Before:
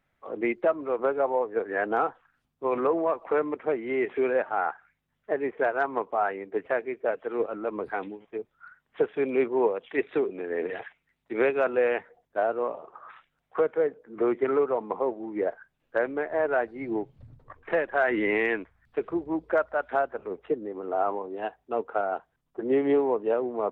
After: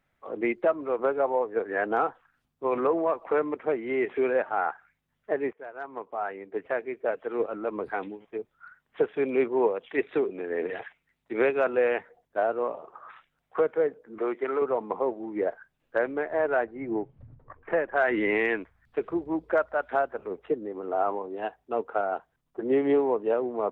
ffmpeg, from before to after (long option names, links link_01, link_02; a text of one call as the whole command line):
ffmpeg -i in.wav -filter_complex "[0:a]asettb=1/sr,asplit=3[link_01][link_02][link_03];[link_01]atrim=end=14.184[link_04];[link_02]atrim=start=14.18:end=14.62,asetpts=PTS-STARTPTS,afade=type=in:duration=0.004:curve=qsin,afade=type=out:start_time=0.436:duration=0.004:curve=qsin,highpass=frequency=530:poles=1[link_05];[link_03]atrim=start=14.616[link_06];[link_04][link_05]acrossfade=duration=0.004:curve1=hsin:curve2=qsin[link_07];[link_07][link_06]acrossfade=duration=0.004:curve1=qsin:curve2=hsin,asettb=1/sr,asplit=3[link_08][link_09][link_10];[link_08]atrim=end=16.644[link_11];[link_09]atrim=start=16.64:end=17.96,asetpts=PTS-STARTPTS,afade=type=in:duration=0.004:curve=qsin,afade=type=out:start_time=1.316:duration=0.004:curve=qsin,lowpass=2000[link_12];[link_10]atrim=start=17.956[link_13];[link_11][link_12]acrossfade=duration=0.004:curve1=hsin:curve2=qsin[link_14];[link_14][link_13]acrossfade=duration=0.004:curve1=qsin:curve2=hsin,asplit=2[link_15][link_16];[link_15]atrim=end=5.53,asetpts=PTS-STARTPTS,afade=type=out:start_time=5.526:duration=0.004:curve=hsin:silence=0.0749894[link_17];[link_16]atrim=start=5.53,asetpts=PTS-STARTPTS,afade=type=in:duration=2.16:curve=qsin:silence=0.0749894[link_18];[link_17][link_18]concat=n=2:v=0:a=1" out.wav